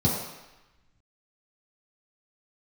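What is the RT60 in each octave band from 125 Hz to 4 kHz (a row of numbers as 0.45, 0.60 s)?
0.85, 0.85, 0.95, 1.1, 1.2, 1.0 s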